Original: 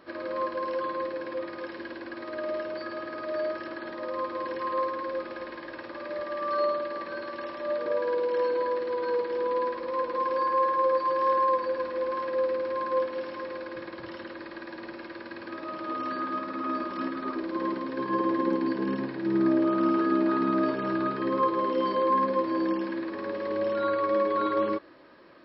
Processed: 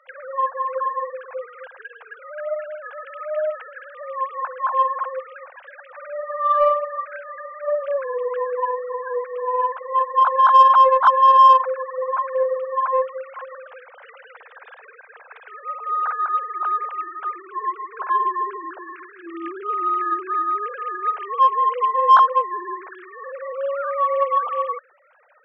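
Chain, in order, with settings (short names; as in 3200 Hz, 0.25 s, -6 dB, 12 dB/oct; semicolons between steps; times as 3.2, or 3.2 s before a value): sine-wave speech; Bessel high-pass 870 Hz, order 4; in parallel at -4 dB: soft clip -23 dBFS, distortion -12 dB; on the sum: gain +8 dB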